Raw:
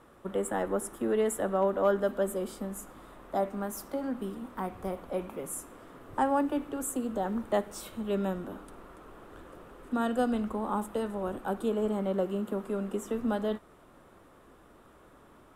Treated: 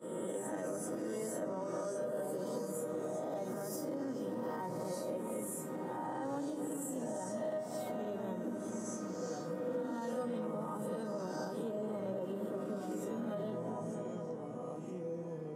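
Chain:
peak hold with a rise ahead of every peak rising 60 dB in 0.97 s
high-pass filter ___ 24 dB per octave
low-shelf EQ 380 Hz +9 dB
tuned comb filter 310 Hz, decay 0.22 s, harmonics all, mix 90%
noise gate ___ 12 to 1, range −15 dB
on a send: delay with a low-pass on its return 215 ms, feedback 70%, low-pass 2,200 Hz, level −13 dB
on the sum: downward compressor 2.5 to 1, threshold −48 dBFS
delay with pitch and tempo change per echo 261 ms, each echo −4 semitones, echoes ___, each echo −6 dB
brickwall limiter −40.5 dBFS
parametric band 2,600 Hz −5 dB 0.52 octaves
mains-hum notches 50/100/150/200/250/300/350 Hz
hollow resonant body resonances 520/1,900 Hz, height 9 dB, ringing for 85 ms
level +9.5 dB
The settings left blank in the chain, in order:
150 Hz, −57 dBFS, 2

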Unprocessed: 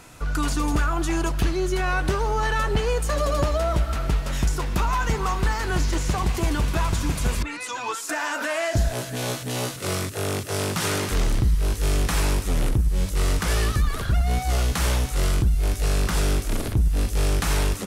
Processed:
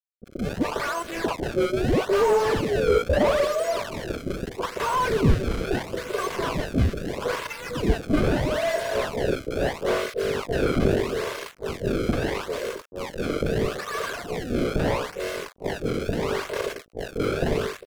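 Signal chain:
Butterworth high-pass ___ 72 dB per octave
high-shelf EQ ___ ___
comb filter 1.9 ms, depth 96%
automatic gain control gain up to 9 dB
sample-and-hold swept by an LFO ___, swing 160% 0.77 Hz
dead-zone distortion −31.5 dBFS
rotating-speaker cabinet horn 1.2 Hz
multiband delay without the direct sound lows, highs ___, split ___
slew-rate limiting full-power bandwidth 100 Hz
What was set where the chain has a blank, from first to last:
370 Hz, 3,300 Hz, −9.5 dB, 27×, 40 ms, 710 Hz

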